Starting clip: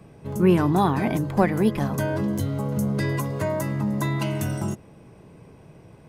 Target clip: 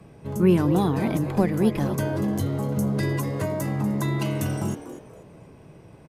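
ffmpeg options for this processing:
-filter_complex "[0:a]acrossover=split=500|3000[a][b][c];[b]acompressor=threshold=-34dB:ratio=2.5[d];[a][d][c]amix=inputs=3:normalize=0,asplit=2[e][f];[f]asplit=3[g][h][i];[g]adelay=241,afreqshift=150,volume=-13dB[j];[h]adelay=482,afreqshift=300,volume=-23.2dB[k];[i]adelay=723,afreqshift=450,volume=-33.3dB[l];[j][k][l]amix=inputs=3:normalize=0[m];[e][m]amix=inputs=2:normalize=0,aresample=32000,aresample=44100"

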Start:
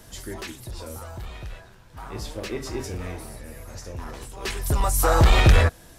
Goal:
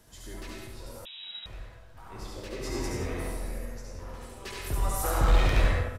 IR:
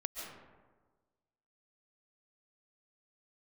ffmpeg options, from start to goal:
-filter_complex "[0:a]asettb=1/sr,asplit=3[a][b][c];[a]atrim=end=2.614[d];[b]atrim=start=2.61:end=3.58,asetpts=PTS-STARTPTS,afade=t=in:d=0.004:c=qsin,afade=t=out:st=0.966:d=0.004:c=qsin,acontrast=75[e];[c]atrim=start=3.576[f];[d][e]acrossfade=d=0.004:c1=hsin:c2=qsin[g];[g][f]acrossfade=d=0.004:c1=qsin:c2=hsin,asettb=1/sr,asplit=3[h][i][j];[h]atrim=end=4.884[k];[i]atrim=start=4.88:end=5.39,asetpts=PTS-STARTPTS,afade=t=in:d=0.004:c=qsin,afade=t=out:st=0.506:d=0.004:c=qsin,asubboost=boost=5:cutoff=180[l];[j]atrim=start=5.386[m];[k][l]acrossfade=d=0.004:c1=hsin:c2=qsin[n];[n][m]acrossfade=d=0.004:c1=qsin:c2=hsin,volume=13dB,asoftclip=hard,volume=-13dB,aecho=1:1:71:0.668[o];[1:a]atrim=start_sample=2205,asetrate=70560,aresample=44100[p];[o][p]afir=irnorm=-1:irlink=0,asettb=1/sr,asplit=3[q][r][s];[q]atrim=end=1.054[t];[r]atrim=start=1.05:end=1.46,asetpts=PTS-STARTPTS,afade=t=in:d=0.004:c=qsin,afade=t=out:st=0.406:d=0.004:c=qsin,lowpass=f=3.3k:t=q:w=0.5098,lowpass=f=3.3k:t=q:w=0.6013,lowpass=f=3.3k:t=q:w=0.9,lowpass=f=3.3k:t=q:w=2.563,afreqshift=-3900[u];[s]atrim=start=1.456[v];[t][u]acrossfade=d=0.004:c1=hsin:c2=qsin[w];[w][v]acrossfade=d=0.004:c1=qsin:c2=hsin,volume=-4.5dB"

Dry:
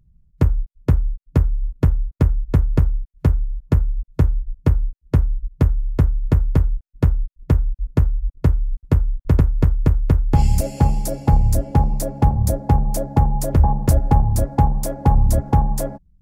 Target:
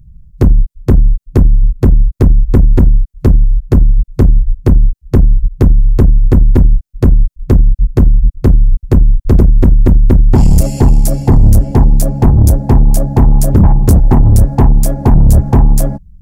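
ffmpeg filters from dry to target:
-af "bass=f=250:g=12,treble=f=4k:g=7,acontrast=78,volume=-1dB"

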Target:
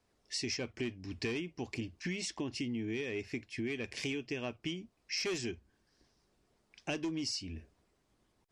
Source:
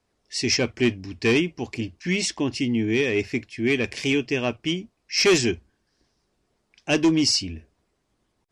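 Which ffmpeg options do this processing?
-af "acompressor=threshold=-33dB:ratio=6,volume=-2.5dB"

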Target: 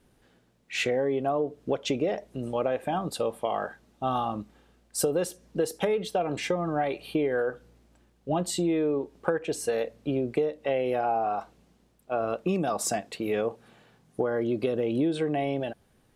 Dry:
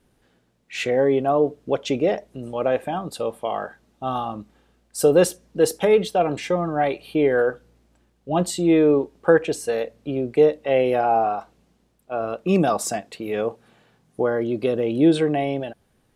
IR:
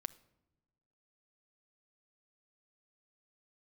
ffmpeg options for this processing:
-af "acompressor=threshold=-23dB:ratio=10"

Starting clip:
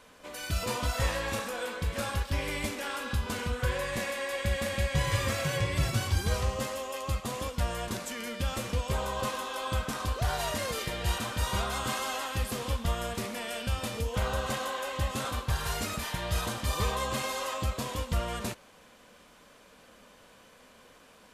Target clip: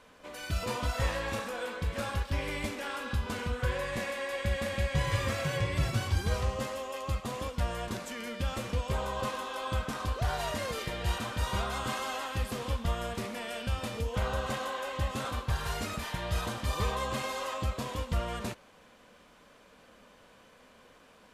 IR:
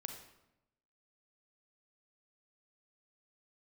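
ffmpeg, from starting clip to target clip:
-af "highshelf=f=5.2k:g=-7,volume=-1dB"

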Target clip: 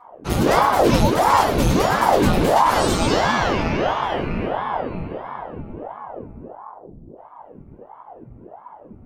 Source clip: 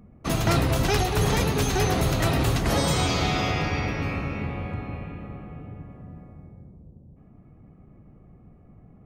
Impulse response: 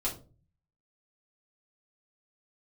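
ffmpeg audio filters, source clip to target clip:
-filter_complex "[0:a]aeval=exprs='0.282*(cos(1*acos(clip(val(0)/0.282,-1,1)))-cos(1*PI/2))+0.00316*(cos(4*acos(clip(val(0)/0.282,-1,1)))-cos(4*PI/2))':c=same[a];[1:a]atrim=start_sample=2205[b];[a][b]afir=irnorm=-1:irlink=0,aeval=exprs='val(0)*sin(2*PI*530*n/s+530*0.85/1.5*sin(2*PI*1.5*n/s))':c=same,volume=1dB"

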